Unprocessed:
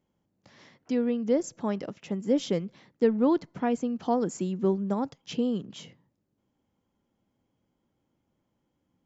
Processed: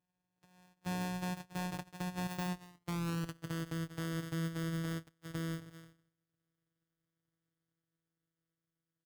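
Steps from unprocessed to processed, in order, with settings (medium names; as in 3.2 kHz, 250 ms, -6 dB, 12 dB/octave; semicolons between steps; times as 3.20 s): sorted samples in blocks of 256 samples; Doppler pass-by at 2.92 s, 17 m/s, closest 5.2 m; high-pass 42 Hz; comb 6.7 ms, depth 84%; reverse; compression 6:1, threshold -36 dBFS, peak gain reduction 20 dB; reverse; peak limiter -36 dBFS, peak gain reduction 10.5 dB; endings held to a fixed fall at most 390 dB/s; trim +7 dB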